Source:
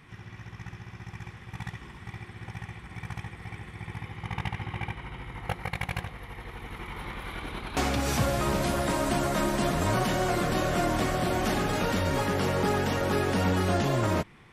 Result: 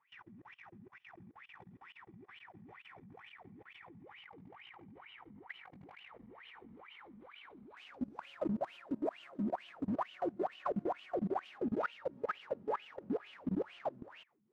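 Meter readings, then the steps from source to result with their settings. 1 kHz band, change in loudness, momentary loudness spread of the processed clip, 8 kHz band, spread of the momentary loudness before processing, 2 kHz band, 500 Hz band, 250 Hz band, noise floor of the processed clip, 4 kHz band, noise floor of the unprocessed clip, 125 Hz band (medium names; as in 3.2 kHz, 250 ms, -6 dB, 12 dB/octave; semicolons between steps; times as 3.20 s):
-12.5 dB, -11.5 dB, 18 LU, under -35 dB, 16 LU, -17.0 dB, -11.0 dB, -10.5 dB, -70 dBFS, -20.0 dB, -49 dBFS, -21.5 dB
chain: wavefolder -23.5 dBFS; wah-wah 2.2 Hz 200–3000 Hz, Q 13; level held to a coarse grid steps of 22 dB; trim +10.5 dB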